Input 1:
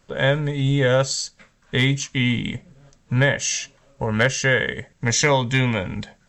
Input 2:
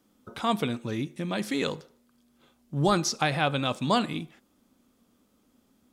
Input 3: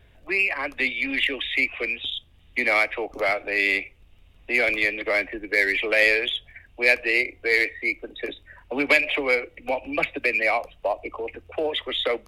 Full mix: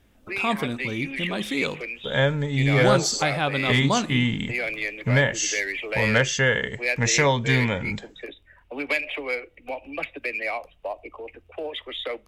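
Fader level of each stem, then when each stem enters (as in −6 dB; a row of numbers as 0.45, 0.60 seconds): −2.0, +1.0, −6.5 decibels; 1.95, 0.00, 0.00 seconds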